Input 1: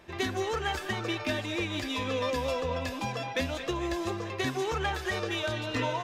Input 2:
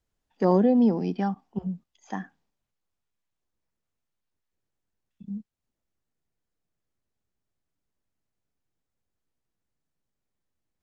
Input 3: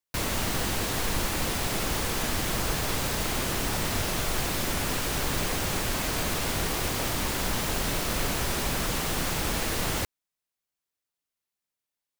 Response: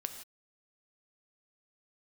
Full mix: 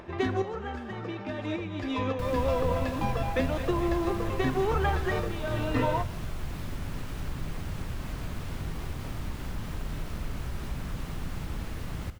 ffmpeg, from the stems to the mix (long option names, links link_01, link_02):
-filter_complex "[0:a]lowpass=frequency=1000:poles=1,volume=2dB,asplit=2[link_01][link_02];[link_02]volume=-7dB[link_03];[1:a]dynaudnorm=framelen=200:gausssize=21:maxgain=11.5dB,volume=-17dB,asplit=2[link_04][link_05];[2:a]bass=frequency=250:gain=13,treble=frequency=4000:gain=-7,adelay=2050,volume=-13dB,asplit=2[link_06][link_07];[link_07]volume=-4dB[link_08];[link_05]apad=whole_len=266056[link_09];[link_01][link_09]sidechaincompress=threshold=-55dB:ratio=8:attack=9.6:release=154[link_10];[link_04][link_06]amix=inputs=2:normalize=0,acompressor=threshold=-40dB:ratio=6,volume=0dB[link_11];[3:a]atrim=start_sample=2205[link_12];[link_03][link_08]amix=inputs=2:normalize=0[link_13];[link_13][link_12]afir=irnorm=-1:irlink=0[link_14];[link_10][link_11][link_14]amix=inputs=3:normalize=0,equalizer=frequency=1200:width_type=o:width=0.77:gain=2,acompressor=mode=upward:threshold=-41dB:ratio=2.5"